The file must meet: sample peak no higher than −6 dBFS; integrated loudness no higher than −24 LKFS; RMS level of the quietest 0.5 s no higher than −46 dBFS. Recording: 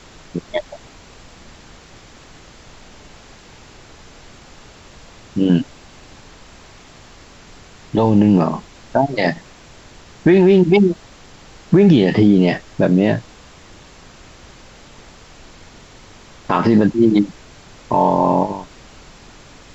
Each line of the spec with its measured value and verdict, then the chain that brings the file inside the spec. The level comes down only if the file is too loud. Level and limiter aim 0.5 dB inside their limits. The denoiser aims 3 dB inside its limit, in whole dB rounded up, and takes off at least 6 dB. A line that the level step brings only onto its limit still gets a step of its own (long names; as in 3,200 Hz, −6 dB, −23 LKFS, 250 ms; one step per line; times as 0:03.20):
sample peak −3.5 dBFS: out of spec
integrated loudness −15.5 LKFS: out of spec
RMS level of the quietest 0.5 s −43 dBFS: out of spec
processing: level −9 dB